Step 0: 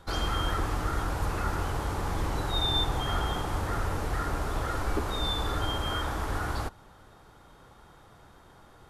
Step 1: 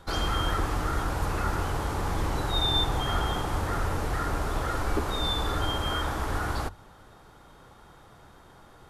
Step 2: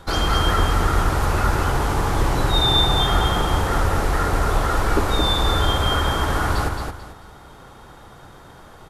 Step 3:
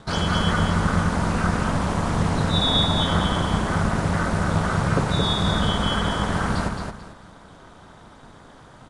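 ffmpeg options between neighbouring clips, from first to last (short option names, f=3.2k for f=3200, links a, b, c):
-af "bandreject=f=50:t=h:w=6,bandreject=f=100:t=h:w=6,volume=2dB"
-af "aecho=1:1:220|440|660|880:0.562|0.152|0.041|0.0111,volume=7.5dB"
-af "aeval=exprs='val(0)*sin(2*PI*130*n/s)':c=same,aresample=22050,aresample=44100"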